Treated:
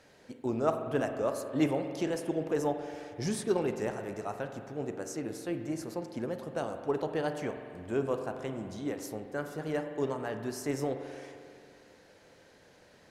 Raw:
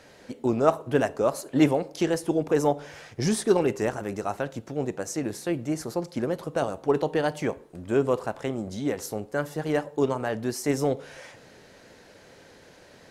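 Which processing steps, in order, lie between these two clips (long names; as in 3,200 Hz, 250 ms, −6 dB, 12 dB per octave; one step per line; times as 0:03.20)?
spring reverb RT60 2.4 s, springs 44 ms, chirp 60 ms, DRR 7 dB
level −8 dB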